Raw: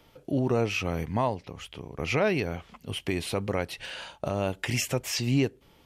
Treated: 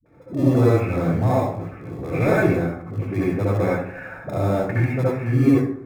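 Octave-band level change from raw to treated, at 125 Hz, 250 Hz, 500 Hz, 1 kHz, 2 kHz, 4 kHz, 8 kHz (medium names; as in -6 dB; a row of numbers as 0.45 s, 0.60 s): +11.0 dB, +10.0 dB, +8.0 dB, +6.0 dB, +4.0 dB, -11.0 dB, under -10 dB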